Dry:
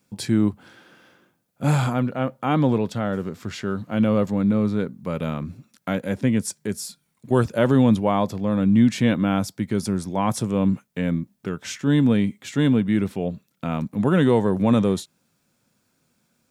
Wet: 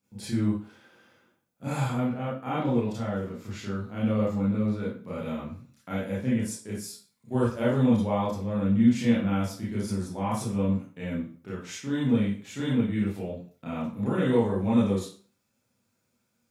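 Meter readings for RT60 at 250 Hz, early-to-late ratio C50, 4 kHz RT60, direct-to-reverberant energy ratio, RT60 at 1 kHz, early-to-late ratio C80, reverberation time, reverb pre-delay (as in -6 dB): 0.40 s, 2.5 dB, 0.35 s, -8.5 dB, 0.45 s, 8.0 dB, 0.45 s, 27 ms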